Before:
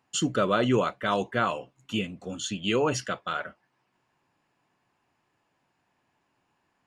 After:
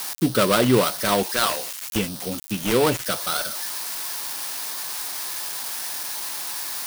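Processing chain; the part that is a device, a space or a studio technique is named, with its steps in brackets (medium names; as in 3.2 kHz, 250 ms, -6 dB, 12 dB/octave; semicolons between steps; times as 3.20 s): 1.23–1.96 s: RIAA curve recording; budget class-D amplifier (dead-time distortion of 0.2 ms; zero-crossing glitches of -19.5 dBFS); trim +6 dB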